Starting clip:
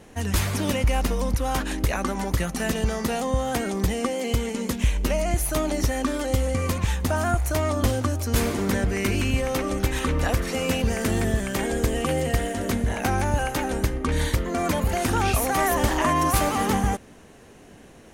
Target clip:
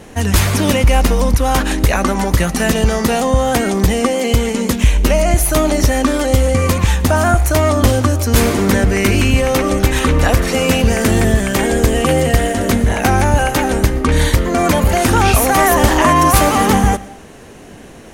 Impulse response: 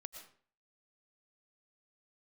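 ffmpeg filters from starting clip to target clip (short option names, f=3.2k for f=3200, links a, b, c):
-filter_complex "[0:a]acontrast=89,asplit=2[a][b];[1:a]atrim=start_sample=2205[c];[b][c]afir=irnorm=-1:irlink=0,volume=-5dB[d];[a][d]amix=inputs=2:normalize=0,volume=1.5dB"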